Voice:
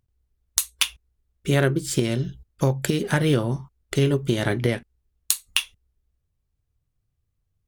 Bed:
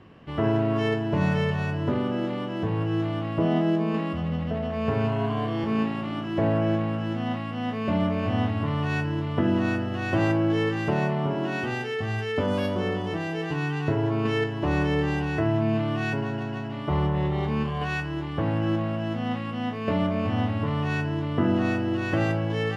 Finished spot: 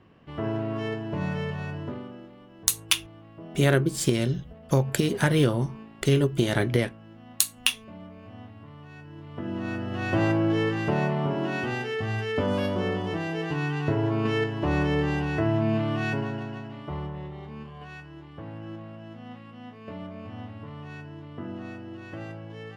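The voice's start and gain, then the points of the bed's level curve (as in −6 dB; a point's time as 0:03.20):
2.10 s, −1.0 dB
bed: 0:01.77 −6 dB
0:02.31 −19.5 dB
0:08.95 −19.5 dB
0:10.02 −0.5 dB
0:16.17 −0.5 dB
0:17.41 −14 dB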